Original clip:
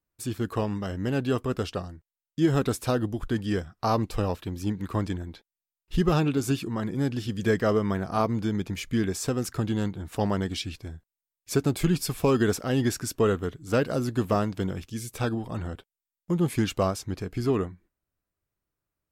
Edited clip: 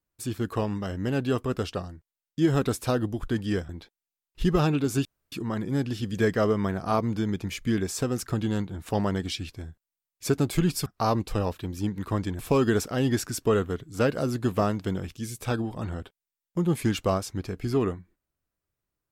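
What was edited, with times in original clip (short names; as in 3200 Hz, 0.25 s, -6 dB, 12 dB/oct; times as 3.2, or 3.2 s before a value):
3.69–5.22 move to 12.12
6.58 insert room tone 0.27 s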